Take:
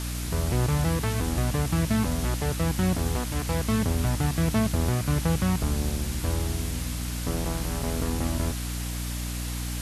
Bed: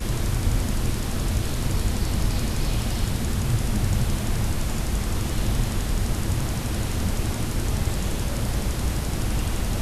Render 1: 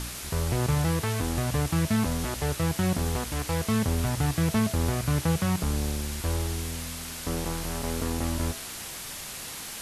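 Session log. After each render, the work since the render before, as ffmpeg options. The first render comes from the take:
-af "bandreject=f=60:t=h:w=4,bandreject=f=120:t=h:w=4,bandreject=f=180:t=h:w=4,bandreject=f=240:t=h:w=4,bandreject=f=300:t=h:w=4,bandreject=f=360:t=h:w=4,bandreject=f=420:t=h:w=4,bandreject=f=480:t=h:w=4,bandreject=f=540:t=h:w=4,bandreject=f=600:t=h:w=4,bandreject=f=660:t=h:w=4"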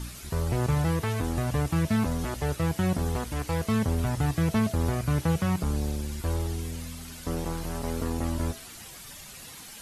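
-af "afftdn=nr=10:nf=-39"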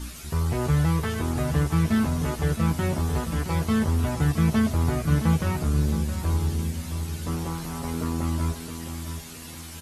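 -filter_complex "[0:a]asplit=2[a][b];[b]adelay=13,volume=-3dB[c];[a][c]amix=inputs=2:normalize=0,asplit=2[d][e];[e]adelay=668,lowpass=f=2k:p=1,volume=-8.5dB,asplit=2[f][g];[g]adelay=668,lowpass=f=2k:p=1,volume=0.39,asplit=2[h][i];[i]adelay=668,lowpass=f=2k:p=1,volume=0.39,asplit=2[j][k];[k]adelay=668,lowpass=f=2k:p=1,volume=0.39[l];[d][f][h][j][l]amix=inputs=5:normalize=0"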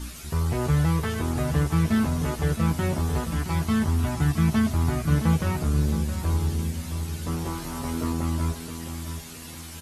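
-filter_complex "[0:a]asettb=1/sr,asplit=3[a][b][c];[a]atrim=end=3.334[d];[b]atrim=start=3.33:end=5.08,asetpts=PTS-STARTPTS,afade=t=in:d=0.004:c=qsin,afade=t=out:st=1.746:d=0.004:c=qsin,equalizer=f=500:t=o:w=0.34:g=-10.5[e];[c]atrim=start=5.076[f];[d][e]acrossfade=d=0.004:c1=hsin:c2=qsin[g];[g][f]acrossfade=d=0.004:c1=qsin:c2=hsin,asettb=1/sr,asplit=3[h][i][j];[h]atrim=end=7.434[k];[i]atrim=start=7.43:end=8.13,asetpts=PTS-STARTPTS,afade=t=in:d=0.004:c=qsin,afade=t=out:st=0.696:d=0.004:c=qsin,asplit=2[l][m];[m]adelay=21,volume=-6dB[n];[l][n]amix=inputs=2:normalize=0,atrim=end_sample=30870[o];[j]atrim=start=8.126[p];[k][o]acrossfade=d=0.004:c1=hsin:c2=qsin[q];[q][p]acrossfade=d=0.004:c1=qsin:c2=hsin"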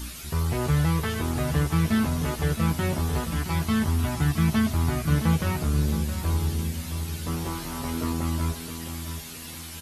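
-filter_complex "[0:a]acrossover=split=4500[a][b];[b]acompressor=threshold=-56dB:ratio=4:attack=1:release=60[c];[a][c]amix=inputs=2:normalize=0,aemphasis=mode=production:type=75fm"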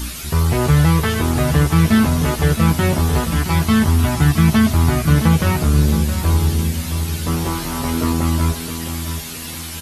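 -af "volume=9.5dB,alimiter=limit=-3dB:level=0:latency=1"

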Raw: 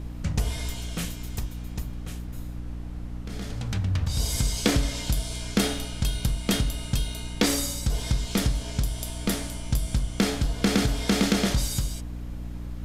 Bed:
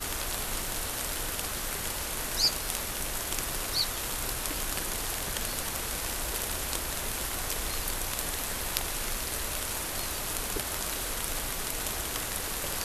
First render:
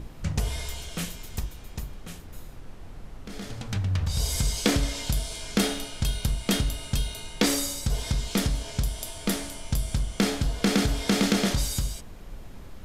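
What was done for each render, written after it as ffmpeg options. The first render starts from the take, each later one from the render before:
-af "bandreject=f=60:t=h:w=6,bandreject=f=120:t=h:w=6,bandreject=f=180:t=h:w=6,bandreject=f=240:t=h:w=6,bandreject=f=300:t=h:w=6,bandreject=f=360:t=h:w=6"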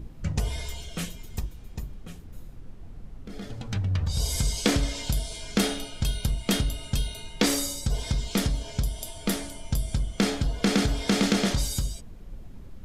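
-af "afftdn=nr=9:nf=-43"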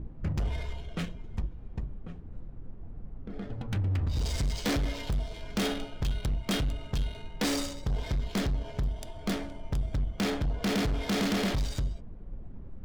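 -af "adynamicsmooth=sensitivity=6.5:basefreq=1.3k,volume=25dB,asoftclip=hard,volume=-25dB"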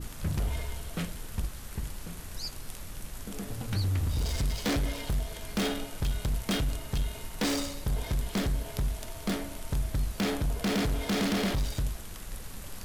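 -filter_complex "[1:a]volume=-13.5dB[a];[0:a][a]amix=inputs=2:normalize=0"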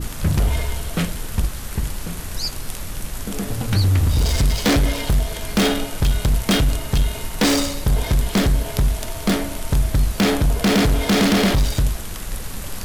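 -af "volume=12dB"

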